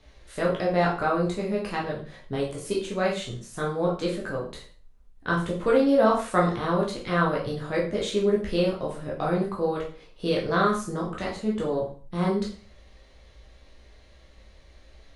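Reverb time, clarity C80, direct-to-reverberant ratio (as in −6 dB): 0.40 s, 11.5 dB, −4.0 dB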